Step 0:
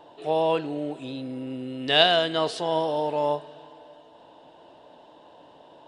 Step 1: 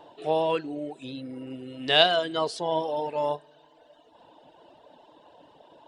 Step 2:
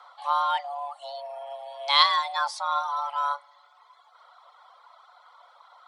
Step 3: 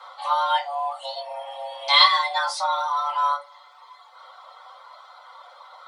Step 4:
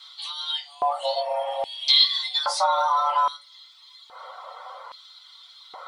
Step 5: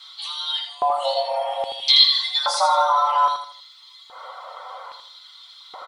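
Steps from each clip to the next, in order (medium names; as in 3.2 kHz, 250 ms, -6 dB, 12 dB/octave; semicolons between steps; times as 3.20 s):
reverb removal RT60 1.3 s
frequency shift +420 Hz
in parallel at +1.5 dB: compression, threshold -33 dBFS, peak gain reduction 18.5 dB; on the sum: reverberation RT60 0.25 s, pre-delay 3 ms, DRR -4.5 dB; trim -3.5 dB
compression 5:1, threshold -23 dBFS, peak gain reduction 12 dB; LFO high-pass square 0.61 Hz 440–3700 Hz; trim +3.5 dB
feedback delay 81 ms, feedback 36%, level -7 dB; trim +2.5 dB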